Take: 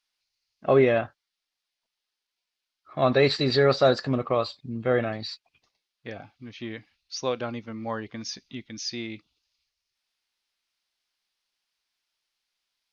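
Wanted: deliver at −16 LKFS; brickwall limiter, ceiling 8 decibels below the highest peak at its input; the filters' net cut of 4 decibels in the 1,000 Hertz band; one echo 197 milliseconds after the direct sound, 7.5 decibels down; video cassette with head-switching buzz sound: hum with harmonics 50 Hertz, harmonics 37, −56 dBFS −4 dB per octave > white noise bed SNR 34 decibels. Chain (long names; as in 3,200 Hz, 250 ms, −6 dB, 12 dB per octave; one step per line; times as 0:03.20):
parametric band 1,000 Hz −6 dB
brickwall limiter −17.5 dBFS
single-tap delay 197 ms −7.5 dB
hum with harmonics 50 Hz, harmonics 37, −56 dBFS −4 dB per octave
white noise bed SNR 34 dB
level +14.5 dB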